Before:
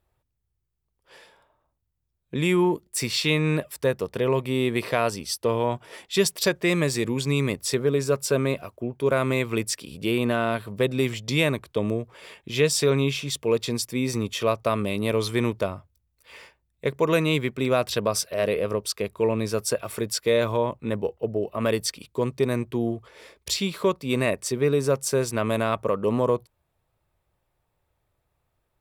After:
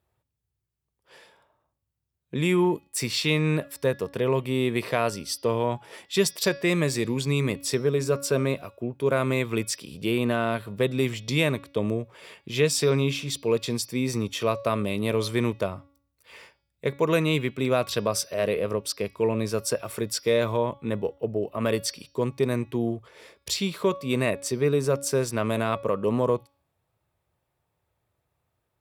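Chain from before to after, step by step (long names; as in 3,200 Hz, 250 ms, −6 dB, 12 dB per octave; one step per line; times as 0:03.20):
high-pass filter 86 Hz
low-shelf EQ 130 Hz +4 dB
hum removal 280.5 Hz, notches 21
level −1.5 dB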